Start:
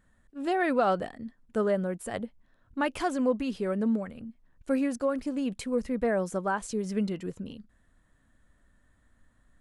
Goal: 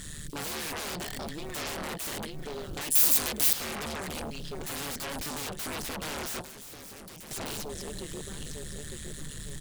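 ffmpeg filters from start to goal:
-filter_complex "[0:a]acompressor=threshold=-37dB:ratio=20,firequalizer=gain_entry='entry(120,0);entry(230,-12);entry(410,4);entry(590,-13);entry(3600,15)':delay=0.05:min_phase=1,asplit=2[a][b];[b]adelay=908,lowpass=f=3.4k:p=1,volume=-19dB,asplit=2[c][d];[d]adelay=908,lowpass=f=3.4k:p=1,volume=0.46,asplit=2[e][f];[f]adelay=908,lowpass=f=3.4k:p=1,volume=0.46,asplit=2[g][h];[h]adelay=908,lowpass=f=3.4k:p=1,volume=0.46[i];[c][e][g][i]amix=inputs=4:normalize=0[j];[a][j]amix=inputs=2:normalize=0,tremolo=f=150:d=0.947,aeval=exprs='0.015*sin(PI/2*10*val(0)/0.015)':c=same,asettb=1/sr,asplit=3[k][l][m];[k]atrim=end=2.904[n];[l]atrim=start=2.9:end=3.53,asetpts=PTS-STARTPTS,afade=t=in:d=0.004:c=qsin,afade=t=out:st=0.626:d=0.004:c=qsin,aemphasis=mode=production:type=75kf[o];[m]atrim=start=3.526[p];[n][o]acrossfade=d=0.004:c1=hsin:c2=qsin[q];[q][p]acrossfade=d=0.004:c1=qsin:c2=hsin,asettb=1/sr,asplit=3[r][s][t];[r]atrim=end=6.414[u];[s]atrim=start=6.41:end=7.31,asetpts=PTS-STARTPTS,afade=t=in:d=0.004:c=qsin,afade=t=out:st=0.896:d=0.004:c=qsin,acrossover=split=480|6400[v][w][x];[v]acompressor=threshold=-54dB:ratio=4[y];[w]acompressor=threshold=-57dB:ratio=4[z];[x]acompressor=threshold=-52dB:ratio=4[aa];[y][z][aa]amix=inputs=3:normalize=0[ab];[t]atrim=start=7.306[ac];[u][ab]acrossfade=d=0.004:c1=hsin:c2=qsin[ad];[ad][ac]acrossfade=d=0.004:c1=qsin:c2=hsin,volume=4.5dB"

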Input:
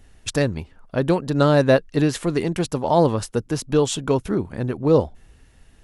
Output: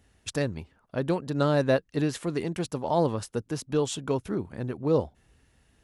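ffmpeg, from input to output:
-af "highpass=58,volume=-7.5dB"

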